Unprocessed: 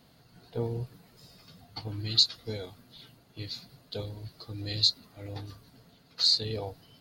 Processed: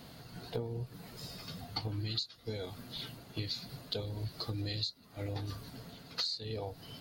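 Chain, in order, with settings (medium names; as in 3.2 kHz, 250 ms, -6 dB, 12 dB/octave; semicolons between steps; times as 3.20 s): compression 20:1, threshold -42 dBFS, peak gain reduction 26 dB; trim +8.5 dB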